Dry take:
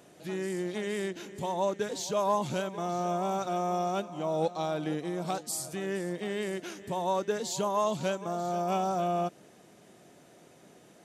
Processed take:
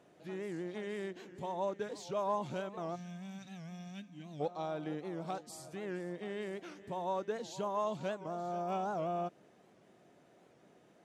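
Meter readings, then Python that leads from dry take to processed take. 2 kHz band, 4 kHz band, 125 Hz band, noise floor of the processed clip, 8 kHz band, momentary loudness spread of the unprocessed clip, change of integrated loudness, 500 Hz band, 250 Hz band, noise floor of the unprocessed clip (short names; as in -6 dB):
-8.0 dB, -11.0 dB, -8.0 dB, -65 dBFS, -16.0 dB, 6 LU, -8.0 dB, -7.5 dB, -8.0 dB, -57 dBFS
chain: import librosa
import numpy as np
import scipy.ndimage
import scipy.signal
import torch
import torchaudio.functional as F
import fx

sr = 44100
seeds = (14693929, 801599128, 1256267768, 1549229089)

y = fx.spec_box(x, sr, start_s=2.95, length_s=1.46, low_hz=320.0, high_hz=1500.0, gain_db=-21)
y = fx.lowpass(y, sr, hz=2200.0, slope=6)
y = fx.low_shelf(y, sr, hz=350.0, db=-3.0)
y = fx.record_warp(y, sr, rpm=78.0, depth_cents=160.0)
y = y * librosa.db_to_amplitude(-5.5)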